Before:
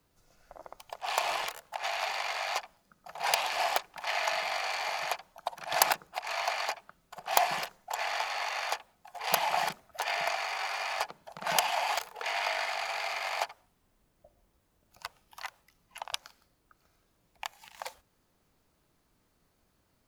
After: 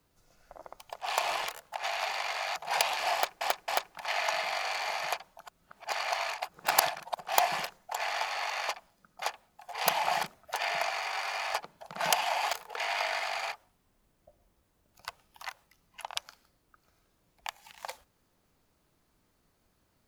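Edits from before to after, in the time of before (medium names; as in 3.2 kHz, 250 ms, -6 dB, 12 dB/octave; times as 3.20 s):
2.56–3.09 s: move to 8.68 s
3.67–3.94 s: loop, 3 plays
5.44–7.16 s: reverse
12.98–13.49 s: delete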